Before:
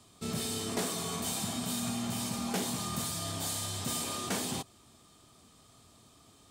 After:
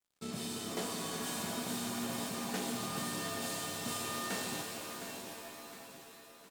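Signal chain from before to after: HPF 140 Hz 12 dB/oct; high shelf 7300 Hz -4.5 dB; in parallel at 0 dB: compressor, threshold -45 dBFS, peak gain reduction 15 dB; on the sum: crossover distortion -48 dBFS; on a send: feedback echo 0.711 s, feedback 42%, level -10 dB; on the sum: shimmer reverb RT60 3.1 s, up +7 st, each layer -2 dB, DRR 4 dB; gain -6 dB

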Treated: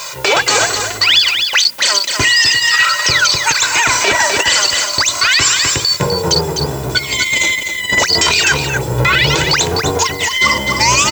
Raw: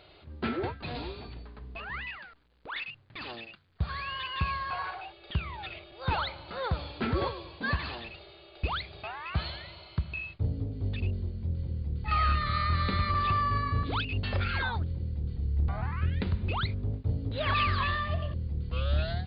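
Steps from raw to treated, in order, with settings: octaver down 1 oct, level -5 dB; HPF 1000 Hz 6 dB/oct; comb 3.5 ms, depth 39%; negative-ratio compressor -38 dBFS, ratio -0.5; added noise violet -57 dBFS; flange 0.19 Hz, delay 3.4 ms, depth 2.8 ms, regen -29%; on a send: echo 0.438 s -8 dB; on the sum: speed mistake 45 rpm record played at 78 rpm; maximiser +33 dB; gain -1 dB

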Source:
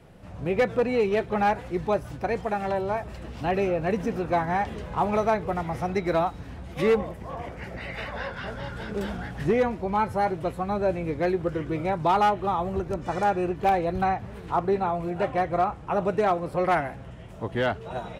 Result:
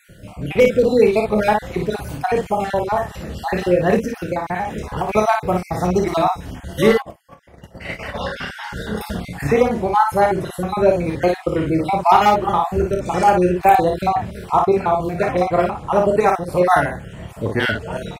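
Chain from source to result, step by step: random spectral dropouts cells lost 44%; high shelf 6900 Hz +11.5 dB; early reflections 28 ms -8 dB, 43 ms -15.5 dB, 56 ms -4.5 dB; 3.98–5.09 compressor 6:1, threshold -28 dBFS, peak gain reduction 8.5 dB; 7.02–8.19 gate -33 dBFS, range -19 dB; gain +8.5 dB

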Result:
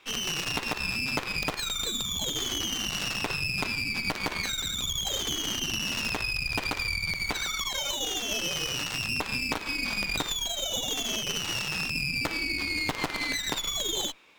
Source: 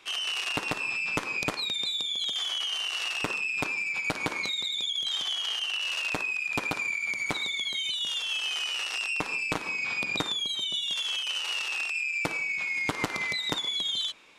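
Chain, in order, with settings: median filter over 5 samples; added harmonics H 6 -10 dB, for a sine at -15.5 dBFS; gain -1.5 dB

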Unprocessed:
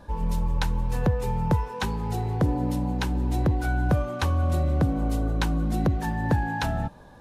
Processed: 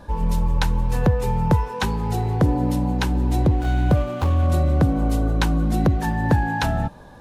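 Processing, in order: 3.43–4.47 median filter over 25 samples; gain +5 dB

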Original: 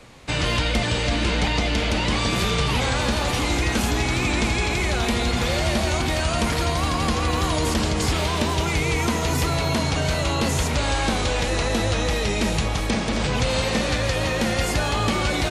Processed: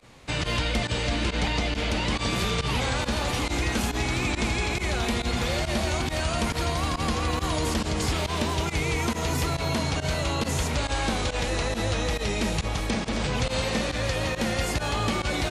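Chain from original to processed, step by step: pump 138 bpm, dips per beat 1, -19 dB, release 65 ms; gain -4 dB

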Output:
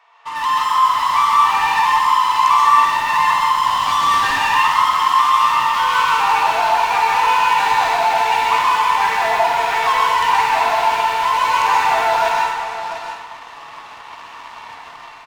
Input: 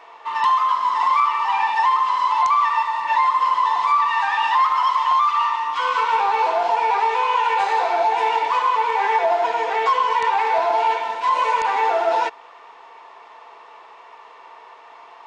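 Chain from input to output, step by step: AGC gain up to 9.5 dB; HPF 910 Hz 12 dB/oct; 3.54–4.32 hard clip -16.5 dBFS, distortion -17 dB; tapped delay 48/697 ms -9.5/-13.5 dB; in parallel at -6 dB: fuzz box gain 26 dB, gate -34 dBFS; on the sum: plate-style reverb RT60 0.93 s, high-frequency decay 0.85×, pre-delay 0.115 s, DRR -2 dB; gain -7.5 dB

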